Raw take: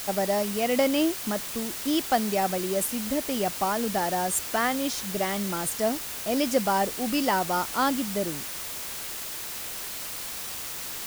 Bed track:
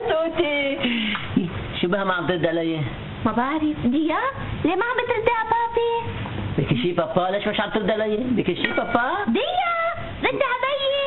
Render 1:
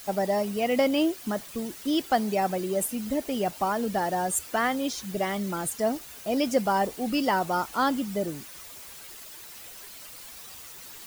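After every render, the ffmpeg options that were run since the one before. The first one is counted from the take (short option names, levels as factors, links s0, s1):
-af "afftdn=nr=11:nf=-36"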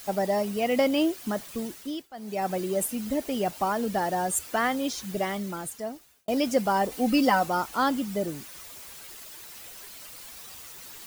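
-filter_complex "[0:a]asettb=1/sr,asplit=3[s0][s1][s2];[s0]atrim=end=6.914[s3];[s1]atrim=start=6.91:end=7.48,asetpts=PTS-STARTPTS,afade=t=in:d=0.004:c=qsin,afade=t=out:st=0.566:d=0.004:c=qsin,aecho=1:1:3.9:0.83,atrim=end_sample=25137[s4];[s2]atrim=start=7.476[s5];[s3][s4]acrossfade=d=0.004:c1=hsin:c2=qsin[s6];[s6][s5]acrossfade=d=0.004:c1=qsin:c2=hsin,asplit=4[s7][s8][s9][s10];[s7]atrim=end=2.08,asetpts=PTS-STARTPTS,afade=t=out:st=1.65:d=0.43:silence=0.0749894[s11];[s8]atrim=start=2.08:end=2.13,asetpts=PTS-STARTPTS,volume=0.075[s12];[s9]atrim=start=2.13:end=6.28,asetpts=PTS-STARTPTS,afade=t=in:d=0.43:silence=0.0749894,afade=t=out:st=3.04:d=1.11[s13];[s10]atrim=start=6.28,asetpts=PTS-STARTPTS,afade=t=in:d=0.004:c=hsin[s14];[s11][s12][s13][s14]concat=n=4:v=0:a=1"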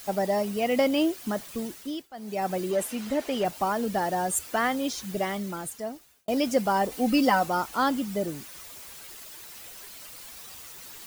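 -filter_complex "[0:a]asettb=1/sr,asplit=3[s0][s1][s2];[s0]atrim=end=2.714[s3];[s1]atrim=start=2.71:end=3.45,asetpts=PTS-STARTPTS,afade=t=in:d=0.004:c=qsin,afade=t=out:st=0.736:d=0.004:c=qsin,asplit=2[s4][s5];[s5]highpass=f=720:p=1,volume=3.98,asoftclip=type=tanh:threshold=0.168[s6];[s4][s6]amix=inputs=2:normalize=0,lowpass=f=2900:p=1,volume=0.501[s7];[s2]atrim=start=3.446[s8];[s3][s7]acrossfade=d=0.004:c1=hsin:c2=qsin[s9];[s9][s8]acrossfade=d=0.004:c1=qsin:c2=hsin"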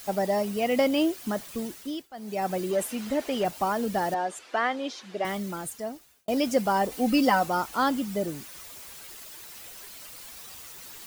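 -filter_complex "[0:a]asettb=1/sr,asplit=3[s0][s1][s2];[s0]atrim=end=4.144[s3];[s1]atrim=start=4.14:end=5.25,asetpts=PTS-STARTPTS,afade=t=in:d=0.004:c=qsin,afade=t=out:st=1.106:d=0.004:c=qsin,highpass=340,lowpass=3900[s4];[s2]atrim=start=5.246[s5];[s3][s4]acrossfade=d=0.004:c1=hsin:c2=qsin[s6];[s6][s5]acrossfade=d=0.004:c1=qsin:c2=hsin"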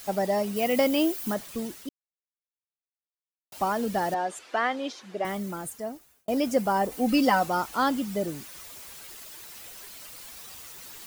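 -filter_complex "[0:a]asettb=1/sr,asplit=3[s0][s1][s2];[s0]atrim=end=0.564[s3];[s1]atrim=start=0.56:end=1.34,asetpts=PTS-STARTPTS,afade=t=in:d=0.004:c=qsin,afade=t=out:st=0.776:d=0.004:c=qsin,highshelf=f=11000:g=11.5[s4];[s2]atrim=start=1.336[s5];[s3][s4]acrossfade=d=0.004:c1=hsin:c2=qsin[s6];[s6][s5]acrossfade=d=0.004:c1=qsin:c2=hsin,asettb=1/sr,asplit=3[s7][s8][s9];[s7]atrim=end=4.924[s10];[s8]atrim=start=4.92:end=7.09,asetpts=PTS-STARTPTS,afade=t=in:d=0.004:c=qsin,afade=t=out:st=2.166:d=0.004:c=qsin,equalizer=f=3800:w=0.72:g=-4.5[s11];[s9]atrim=start=7.086[s12];[s10][s11]acrossfade=d=0.004:c1=hsin:c2=qsin[s13];[s13][s12]acrossfade=d=0.004:c1=qsin:c2=hsin,asplit=3[s14][s15][s16];[s14]atrim=end=1.89,asetpts=PTS-STARTPTS,afade=t=out:st=1.886:d=0.004:c=hsin[s17];[s15]atrim=start=1.89:end=3.52,asetpts=PTS-STARTPTS,volume=0[s18];[s16]atrim=start=3.52,asetpts=PTS-STARTPTS,afade=t=in:d=0.004:c=hsin[s19];[s17][s18][s19]concat=n=3:v=0:a=1"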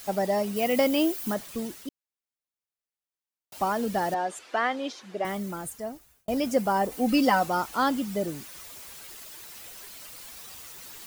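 -filter_complex "[0:a]asettb=1/sr,asplit=3[s0][s1][s2];[s0]atrim=end=5.404[s3];[s1]atrim=start=5.4:end=6.46,asetpts=PTS-STARTPTS,afade=t=in:d=0.004:c=qsin,afade=t=out:st=1.056:d=0.004:c=qsin,asubboost=boost=9:cutoff=150[s4];[s2]atrim=start=6.456[s5];[s3][s4]acrossfade=d=0.004:c1=hsin:c2=qsin[s6];[s6][s5]acrossfade=d=0.004:c1=qsin:c2=hsin"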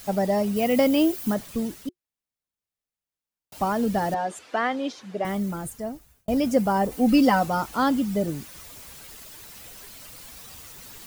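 -af "lowshelf=f=310:g=9.5,bandreject=f=360:w=12"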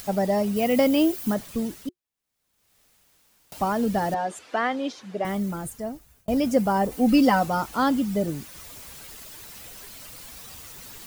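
-af "acompressor=mode=upward:threshold=0.0126:ratio=2.5"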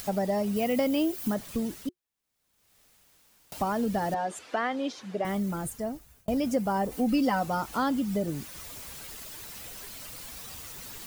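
-af "acompressor=threshold=0.0398:ratio=2"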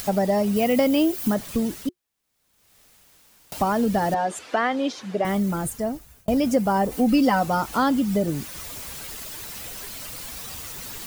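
-af "volume=2.11"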